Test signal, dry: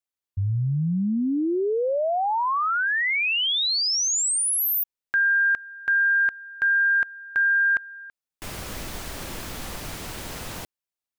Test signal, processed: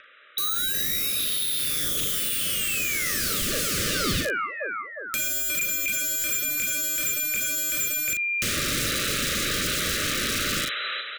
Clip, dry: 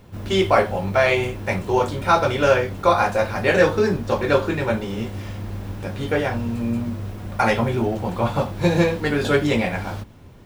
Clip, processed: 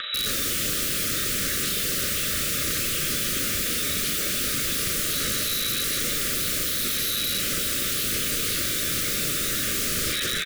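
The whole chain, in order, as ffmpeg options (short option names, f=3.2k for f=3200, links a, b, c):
-filter_complex "[0:a]asplit=2[a][b];[b]aecho=0:1:359|718|1077|1436|1795:0.282|0.124|0.0546|0.024|0.0106[c];[a][c]amix=inputs=2:normalize=0,lowpass=f=3.4k:t=q:w=0.5098,lowpass=f=3.4k:t=q:w=0.6013,lowpass=f=3.4k:t=q:w=0.9,lowpass=f=3.4k:t=q:w=2.563,afreqshift=-4000,highpass=f=69:w=0.5412,highpass=f=69:w=1.3066,acrossover=split=470 2400:gain=0.0708 1 0.1[d][e][f];[d][e][f]amix=inputs=3:normalize=0,bandreject=f=341.7:t=h:w=4,bandreject=f=683.4:t=h:w=4,bandreject=f=1.0251k:t=h:w=4,bandreject=f=1.3668k:t=h:w=4,bandreject=f=1.7085k:t=h:w=4,bandreject=f=2.0502k:t=h:w=4,bandreject=f=2.3919k:t=h:w=4,bandreject=f=2.7336k:t=h:w=4,bandreject=f=3.0753k:t=h:w=4,bandreject=f=3.417k:t=h:w=4,bandreject=f=3.7587k:t=h:w=4,bandreject=f=4.1004k:t=h:w=4,bandreject=f=4.4421k:t=h:w=4,acrossover=split=150[g][h];[h]aeval=exprs='0.299*sin(PI/2*6.31*val(0)/0.299)':c=same[i];[g][i]amix=inputs=2:normalize=0,acompressor=mode=upward:threshold=-36dB:ratio=2.5:attack=9.4:release=176:knee=2.83:detection=peak,aeval=exprs='(mod(8.91*val(0)+1,2)-1)/8.91':c=same,asplit=2[j][k];[k]adelay=39,volume=-7.5dB[l];[j][l]amix=inputs=2:normalize=0,acrossover=split=400[m][n];[n]acompressor=threshold=-30dB:ratio=6:attack=4.1:release=42:knee=2.83:detection=peak[o];[m][o]amix=inputs=2:normalize=0,asuperstop=centerf=850:order=20:qfactor=1.6,volume=5dB"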